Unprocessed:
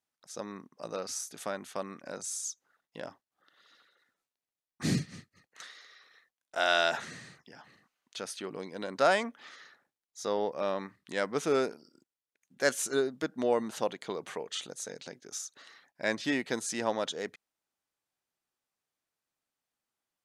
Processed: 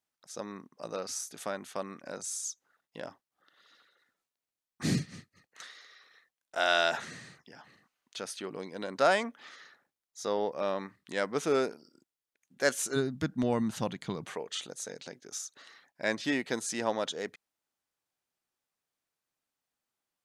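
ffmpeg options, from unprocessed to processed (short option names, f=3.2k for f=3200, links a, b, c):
-filter_complex "[0:a]asplit=3[a][b][c];[a]afade=t=out:st=12.95:d=0.02[d];[b]asubboost=boost=9:cutoff=150,afade=t=in:st=12.95:d=0.02,afade=t=out:st=14.24:d=0.02[e];[c]afade=t=in:st=14.24:d=0.02[f];[d][e][f]amix=inputs=3:normalize=0"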